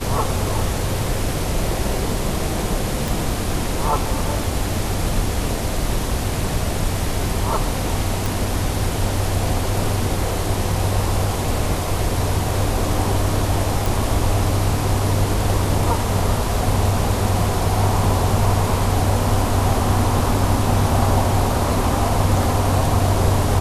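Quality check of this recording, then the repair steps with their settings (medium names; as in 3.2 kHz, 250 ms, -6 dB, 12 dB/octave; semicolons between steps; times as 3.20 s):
3.08 s: pop
8.26 s: pop
13.86 s: pop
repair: de-click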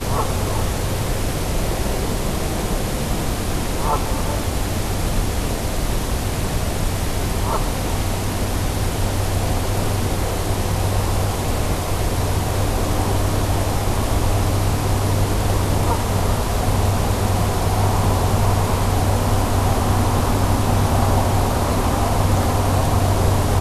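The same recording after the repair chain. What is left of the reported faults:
3.08 s: pop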